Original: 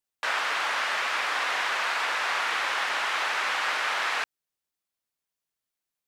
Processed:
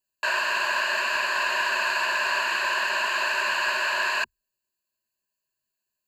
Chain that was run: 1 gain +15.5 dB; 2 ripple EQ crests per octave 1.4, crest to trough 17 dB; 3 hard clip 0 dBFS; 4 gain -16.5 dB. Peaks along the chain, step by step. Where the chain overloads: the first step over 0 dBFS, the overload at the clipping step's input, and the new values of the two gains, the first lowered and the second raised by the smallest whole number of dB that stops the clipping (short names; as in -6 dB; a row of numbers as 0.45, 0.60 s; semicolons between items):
+1.0, +4.0, 0.0, -16.5 dBFS; step 1, 4.0 dB; step 1 +11.5 dB, step 4 -12.5 dB